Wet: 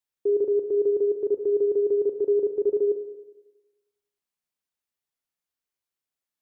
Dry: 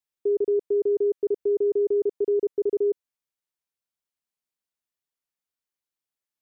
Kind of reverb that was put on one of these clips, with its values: spring tank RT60 1.1 s, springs 34/45 ms, chirp 50 ms, DRR 7 dB

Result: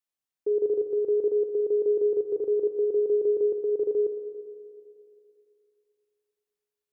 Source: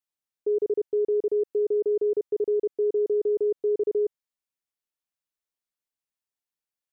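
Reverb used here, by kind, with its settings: spring tank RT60 2.6 s, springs 43/56 ms, chirp 75 ms, DRR 7 dB; trim -1 dB

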